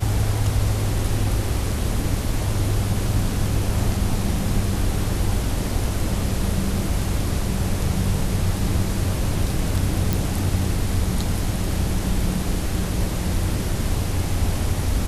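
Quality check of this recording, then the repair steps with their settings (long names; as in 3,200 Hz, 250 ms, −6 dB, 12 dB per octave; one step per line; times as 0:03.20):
0:10.13: click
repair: click removal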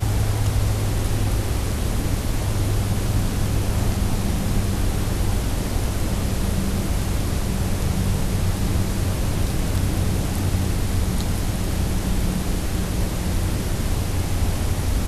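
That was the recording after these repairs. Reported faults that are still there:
none of them is left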